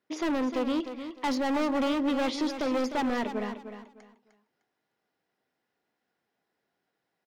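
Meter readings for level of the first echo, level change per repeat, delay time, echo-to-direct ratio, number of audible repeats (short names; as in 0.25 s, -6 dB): -10.0 dB, -12.0 dB, 0.304 s, -9.5 dB, 3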